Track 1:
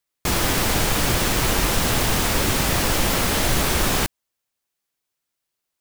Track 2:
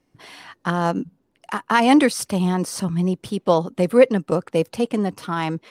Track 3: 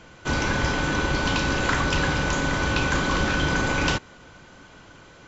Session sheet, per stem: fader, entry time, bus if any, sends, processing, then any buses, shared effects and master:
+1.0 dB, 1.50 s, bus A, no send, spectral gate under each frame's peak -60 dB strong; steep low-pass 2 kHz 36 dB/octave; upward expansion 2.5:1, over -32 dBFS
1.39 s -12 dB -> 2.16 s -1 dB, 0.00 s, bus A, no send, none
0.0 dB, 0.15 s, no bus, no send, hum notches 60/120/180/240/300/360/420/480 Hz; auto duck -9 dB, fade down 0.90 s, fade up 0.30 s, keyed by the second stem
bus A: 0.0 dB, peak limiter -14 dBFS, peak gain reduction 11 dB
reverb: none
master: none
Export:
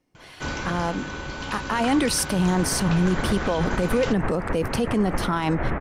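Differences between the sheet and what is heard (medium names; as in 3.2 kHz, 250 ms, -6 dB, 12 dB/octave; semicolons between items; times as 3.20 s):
stem 1: entry 1.50 s -> 2.15 s; stem 2 -12.0 dB -> -4.0 dB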